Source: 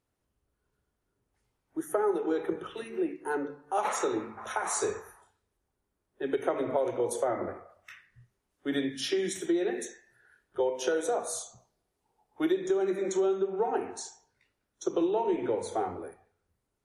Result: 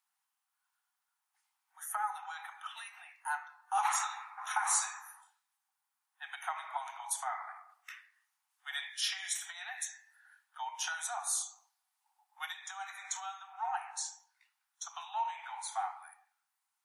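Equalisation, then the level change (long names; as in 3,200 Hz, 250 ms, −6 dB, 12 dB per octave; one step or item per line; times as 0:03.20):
Butterworth high-pass 760 Hz 96 dB per octave
high-shelf EQ 7,600 Hz +5.5 dB
0.0 dB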